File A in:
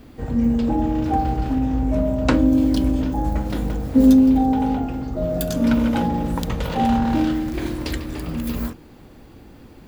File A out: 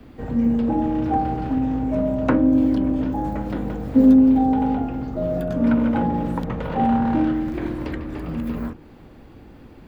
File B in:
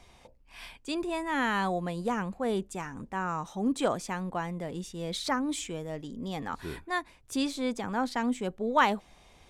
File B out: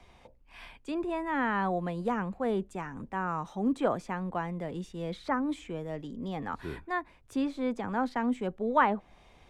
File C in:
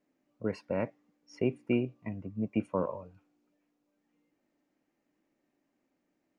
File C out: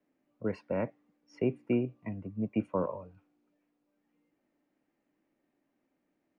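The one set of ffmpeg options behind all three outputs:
ffmpeg -i in.wav -filter_complex "[0:a]bass=frequency=250:gain=0,treble=frequency=4000:gain=-9,acrossover=split=100|340|2200[link_01][link_02][link_03][link_04];[link_01]asoftclip=type=hard:threshold=-34dB[link_05];[link_04]acompressor=threshold=-52dB:ratio=6[link_06];[link_05][link_02][link_03][link_06]amix=inputs=4:normalize=0" out.wav

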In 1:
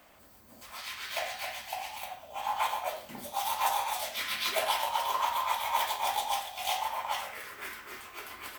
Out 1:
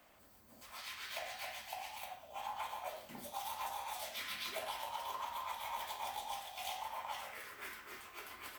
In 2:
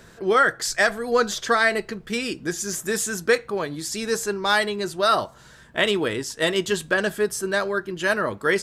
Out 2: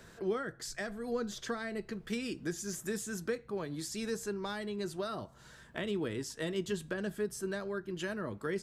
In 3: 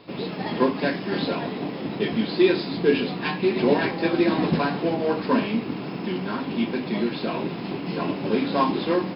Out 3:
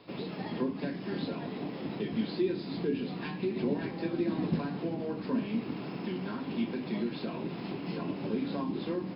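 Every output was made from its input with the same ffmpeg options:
ffmpeg -i in.wav -filter_complex "[0:a]acrossover=split=340[link_01][link_02];[link_02]acompressor=threshold=-33dB:ratio=6[link_03];[link_01][link_03]amix=inputs=2:normalize=0,volume=-6.5dB" out.wav

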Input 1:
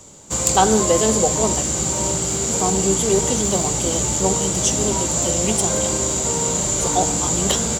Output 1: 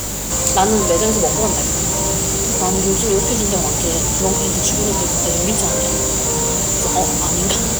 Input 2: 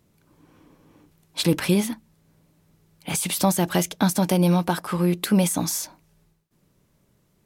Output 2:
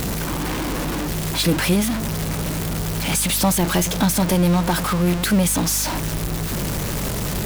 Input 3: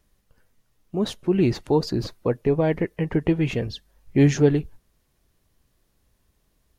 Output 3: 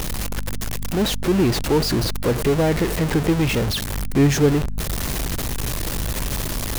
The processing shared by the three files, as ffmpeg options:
ffmpeg -i in.wav -af "aeval=exprs='val(0)+0.5*0.133*sgn(val(0))':channel_layout=same,aeval=exprs='val(0)+0.0398*(sin(2*PI*50*n/s)+sin(2*PI*2*50*n/s)/2+sin(2*PI*3*50*n/s)/3+sin(2*PI*4*50*n/s)/4+sin(2*PI*5*50*n/s)/5)':channel_layout=same,volume=-1.5dB" out.wav

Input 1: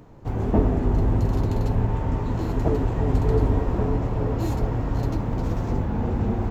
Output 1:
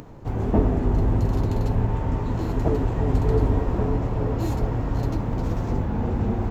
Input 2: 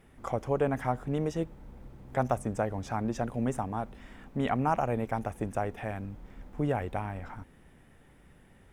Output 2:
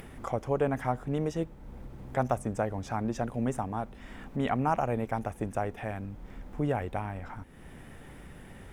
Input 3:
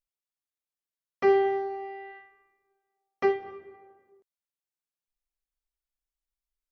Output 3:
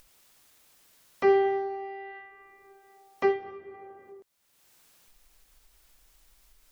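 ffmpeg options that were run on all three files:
ffmpeg -i in.wav -af "acompressor=mode=upward:threshold=-36dB:ratio=2.5" out.wav

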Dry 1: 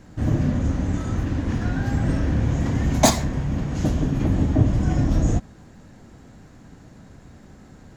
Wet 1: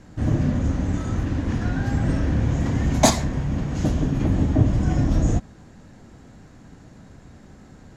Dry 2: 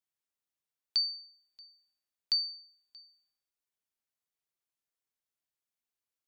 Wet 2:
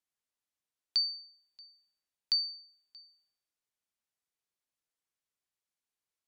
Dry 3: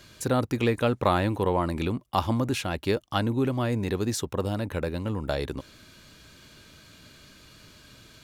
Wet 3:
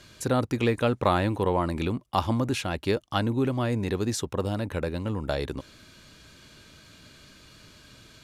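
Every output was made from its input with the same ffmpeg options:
ffmpeg -i in.wav -af "lowpass=12000" out.wav

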